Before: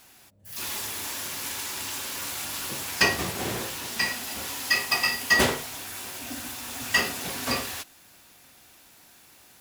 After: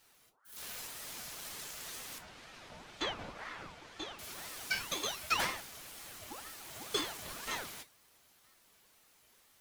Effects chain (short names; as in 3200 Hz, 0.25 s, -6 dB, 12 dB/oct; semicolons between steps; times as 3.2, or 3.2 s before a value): 2.18–4.19 tape spacing loss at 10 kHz 23 dB; resonator 270 Hz, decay 0.19 s, harmonics all, mix 80%; ring modulator with a swept carrier 970 Hz, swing 65%, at 2 Hz